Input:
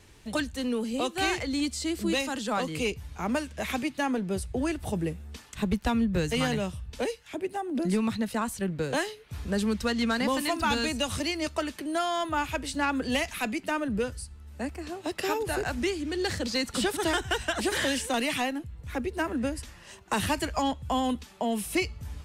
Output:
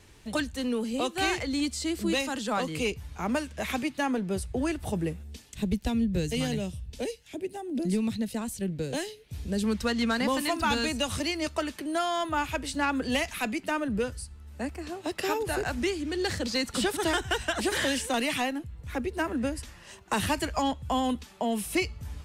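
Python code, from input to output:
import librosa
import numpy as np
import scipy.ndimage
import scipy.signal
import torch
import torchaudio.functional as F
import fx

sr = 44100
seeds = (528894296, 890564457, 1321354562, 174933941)

y = fx.peak_eq(x, sr, hz=1200.0, db=-13.0, octaves=1.4, at=(5.23, 9.64))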